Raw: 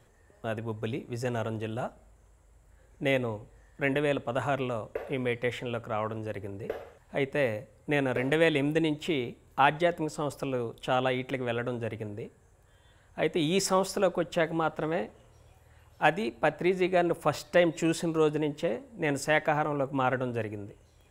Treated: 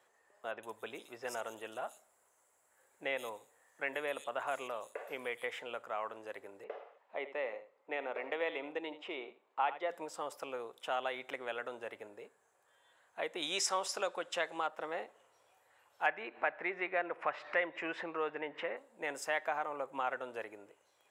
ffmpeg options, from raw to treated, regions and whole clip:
ffmpeg -i in.wav -filter_complex "[0:a]asettb=1/sr,asplit=3[link_01][link_02][link_03];[link_01]atrim=end=0.514[link_04];[link_02]atrim=start=0.51:end=5.48,asetpts=PTS-STARTPTS,afade=type=in:duration=0.004:curve=qsin,afade=type=out:start_time=4.966:duration=0.004:curve=qsin,highshelf=frequency=5800:gain=11,acrossover=split=3900[link_05][link_06];[link_06]adelay=120[link_07];[link_05][link_07]amix=inputs=2:normalize=0,atrim=end_sample=219177[link_08];[link_03]atrim=start=5.476[link_09];[link_04][link_08]acrossfade=duration=0.004:curve1=hsin:curve2=qsin[link_10];[link_10][link_09]acrossfade=duration=0.004:curve1=qsin:curve2=hsin,asettb=1/sr,asplit=3[link_11][link_12][link_13];[link_11]atrim=end=6.644[link_14];[link_12]atrim=start=6.64:end=9.9,asetpts=PTS-STARTPTS,afade=type=in:duration=0.004:curve=qsin,afade=type=out:start_time=3.256:duration=0.004:curve=qsin,highpass=270,lowpass=2700,equalizer=frequency=1600:width_type=o:width=0.34:gain=-8,aecho=1:1:80:0.2,atrim=end_sample=143766[link_15];[link_13]atrim=start=9.896[link_16];[link_14][link_15]acrossfade=duration=0.004:curve1=hsin:curve2=qsin[link_17];[link_17][link_16]acrossfade=duration=0.004:curve1=qsin:curve2=hsin,asettb=1/sr,asplit=3[link_18][link_19][link_20];[link_18]atrim=end=13.424[link_21];[link_19]atrim=start=13.42:end=14.67,asetpts=PTS-STARTPTS,afade=type=in:duration=0.004:curve=qsin,afade=type=out:start_time=1.246:duration=0.004:curve=qsin,lowpass=7800,highshelf=frequency=2800:gain=11.5[link_22];[link_20]atrim=start=14.666[link_23];[link_21][link_22]acrossfade=duration=0.004:curve1=hsin:curve2=qsin[link_24];[link_24][link_23]acrossfade=duration=0.004:curve1=qsin:curve2=hsin,asettb=1/sr,asplit=3[link_25][link_26][link_27];[link_25]atrim=end=16.064[link_28];[link_26]atrim=start=16.06:end=18.77,asetpts=PTS-STARTPTS,afade=type=in:duration=0.004:curve=qsin,afade=type=out:start_time=2.706:duration=0.004:curve=qsin,lowpass=frequency=2100:width_type=q:width=2.3,acompressor=mode=upward:threshold=-28dB:ratio=2.5:attack=3.2:release=140:knee=2.83:detection=peak[link_29];[link_27]atrim=start=18.766[link_30];[link_28][link_29]acrossfade=duration=0.004:curve1=hsin:curve2=qsin[link_31];[link_31][link_30]acrossfade=duration=0.004:curve1=qsin:curve2=hsin,highpass=860,tiltshelf=frequency=1200:gain=4.5,acompressor=threshold=-35dB:ratio=1.5,volume=-2dB" out.wav

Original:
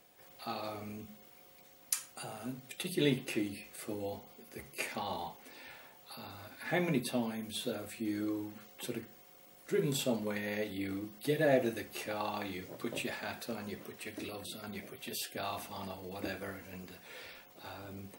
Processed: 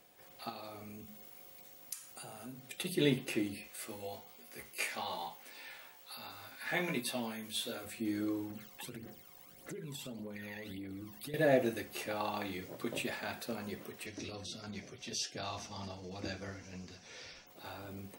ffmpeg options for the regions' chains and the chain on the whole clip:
ffmpeg -i in.wav -filter_complex "[0:a]asettb=1/sr,asplit=3[link_01][link_02][link_03];[link_01]atrim=end=0.494[link_04];[link_02]atrim=start=0.49:end=2.6,asetpts=PTS-STARTPTS,afade=type=in:duration=0.004:curve=qsin,afade=type=out:start_time=2.106:duration=0.004:curve=qsin,highshelf=frequency=6000:gain=6,acompressor=threshold=-49dB:ratio=2:attack=3.2:release=140:knee=1:detection=peak[link_05];[link_03]atrim=start=2.596[link_06];[link_04][link_05]acrossfade=duration=0.004:curve1=hsin:curve2=qsin[link_07];[link_07][link_06]acrossfade=duration=0.004:curve1=qsin:curve2=hsin,asettb=1/sr,asplit=3[link_08][link_09][link_10];[link_08]atrim=end=3.684[link_11];[link_09]atrim=start=3.68:end=7.85,asetpts=PTS-STARTPTS,afade=type=in:duration=0.004:curve=qsin,afade=type=out:start_time=4.166:duration=0.004:curve=qsin,tiltshelf=frequency=630:gain=-5.5,flanger=delay=16.5:depth=2.1:speed=1.2[link_12];[link_10]atrim=start=7.846[link_13];[link_11][link_12]acrossfade=duration=0.004:curve1=hsin:curve2=qsin[link_14];[link_14][link_13]acrossfade=duration=0.004:curve1=qsin:curve2=hsin,asettb=1/sr,asplit=3[link_15][link_16][link_17];[link_15]atrim=end=8.504[link_18];[link_16]atrim=start=8.5:end=11.34,asetpts=PTS-STARTPTS,afade=type=in:duration=0.004:curve=qsin,afade=type=out:start_time=2.836:duration=0.004:curve=qsin,aphaser=in_gain=1:out_gain=1:delay=1.2:decay=0.6:speed=1.7:type=triangular,acompressor=threshold=-41dB:ratio=12:attack=3.2:release=140:knee=1:detection=peak[link_19];[link_17]atrim=start=11.336[link_20];[link_18][link_19]acrossfade=duration=0.004:curve1=hsin:curve2=qsin[link_21];[link_21][link_20]acrossfade=duration=0.004:curve1=qsin:curve2=hsin,asettb=1/sr,asplit=3[link_22][link_23][link_24];[link_22]atrim=end=14.064[link_25];[link_23]atrim=start=14.06:end=17.47,asetpts=PTS-STARTPTS,afade=type=in:duration=0.004:curve=qsin,afade=type=out:start_time=3.406:duration=0.004:curve=qsin,lowpass=frequency=5800:width_type=q:width=5.1,lowshelf=frequency=140:gain=10.5,flanger=delay=6.2:depth=3.4:regen=-55:speed=1.5:shape=sinusoidal[link_26];[link_24]atrim=start=17.466[link_27];[link_25][link_26]acrossfade=duration=0.004:curve1=hsin:curve2=qsin[link_28];[link_28][link_27]acrossfade=duration=0.004:curve1=qsin:curve2=hsin" out.wav

